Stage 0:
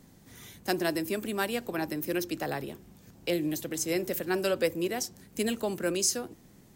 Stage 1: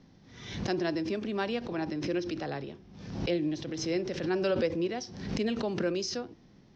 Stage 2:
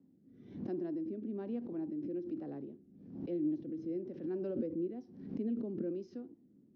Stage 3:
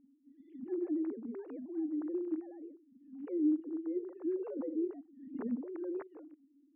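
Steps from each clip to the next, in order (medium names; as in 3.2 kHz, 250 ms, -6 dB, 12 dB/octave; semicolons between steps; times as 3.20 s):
Chebyshev low-pass 5.7 kHz, order 5; harmonic-percussive split percussive -5 dB; swell ahead of each attack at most 62 dB/s
band-pass filter 270 Hz, Q 2.6; rotary cabinet horn 1.1 Hz
formants replaced by sine waves; trim +1.5 dB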